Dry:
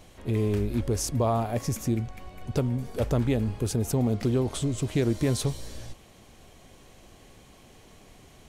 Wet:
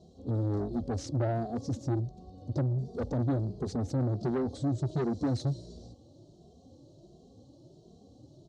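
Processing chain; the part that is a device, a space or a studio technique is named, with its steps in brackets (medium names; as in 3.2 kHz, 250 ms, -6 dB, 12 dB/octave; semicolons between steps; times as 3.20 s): Chebyshev band-stop 440–7900 Hz, order 2; barber-pole flanger into a guitar amplifier (endless flanger 2.5 ms +1.4 Hz; saturation -29.5 dBFS, distortion -10 dB; cabinet simulation 110–4600 Hz, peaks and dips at 210 Hz -6 dB, 440 Hz -7 dB, 1 kHz -6 dB, 2.4 kHz -4 dB, 4.1 kHz +7 dB); trim +7 dB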